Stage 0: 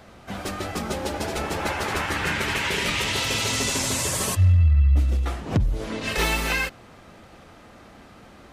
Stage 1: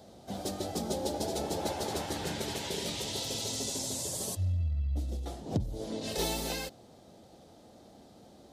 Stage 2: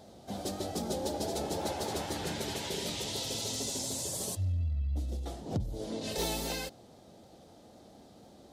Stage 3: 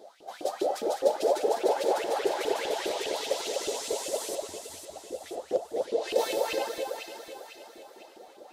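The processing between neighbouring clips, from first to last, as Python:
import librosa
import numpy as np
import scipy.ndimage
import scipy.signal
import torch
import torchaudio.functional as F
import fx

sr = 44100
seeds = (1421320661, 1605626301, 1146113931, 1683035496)

y1 = fx.highpass(x, sr, hz=140.0, slope=6)
y1 = fx.band_shelf(y1, sr, hz=1700.0, db=-14.5, octaves=1.7)
y1 = fx.rider(y1, sr, range_db=4, speed_s=2.0)
y1 = F.gain(torch.from_numpy(y1), -6.5).numpy()
y2 = 10.0 ** (-23.0 / 20.0) * np.tanh(y1 / 10.0 ** (-23.0 / 20.0))
y2 = fx.vibrato(y2, sr, rate_hz=3.9, depth_cents=30.0)
y3 = fx.filter_lfo_highpass(y2, sr, shape='saw_up', hz=4.9, low_hz=320.0, high_hz=2900.0, q=7.3)
y3 = fx.echo_alternate(y3, sr, ms=250, hz=1600.0, feedback_pct=67, wet_db=-3.0)
y3 = fx.dynamic_eq(y3, sr, hz=520.0, q=1.9, threshold_db=-40.0, ratio=4.0, max_db=6)
y3 = F.gain(torch.from_numpy(y3), -2.5).numpy()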